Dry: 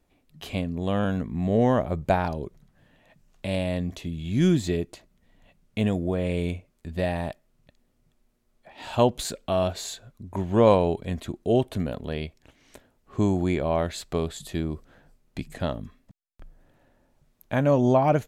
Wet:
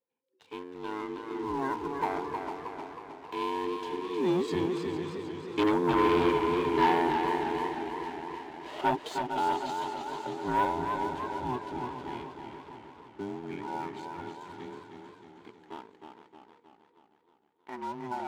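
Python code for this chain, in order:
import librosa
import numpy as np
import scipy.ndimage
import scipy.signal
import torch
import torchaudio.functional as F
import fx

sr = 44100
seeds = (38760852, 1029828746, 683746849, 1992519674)

y = fx.band_invert(x, sr, width_hz=500)
y = fx.doppler_pass(y, sr, speed_mps=12, closest_m=9.7, pass_at_s=6.31)
y = fx.spacing_loss(y, sr, db_at_10k=20)
y = fx.echo_swing(y, sr, ms=759, ratio=1.5, feedback_pct=39, wet_db=-10.5)
y = fx.leveller(y, sr, passes=2)
y = fx.highpass(y, sr, hz=540.0, slope=6)
y = fx.echo_warbled(y, sr, ms=314, feedback_pct=56, rate_hz=2.8, cents=75, wet_db=-6.0)
y = y * 10.0 ** (3.0 / 20.0)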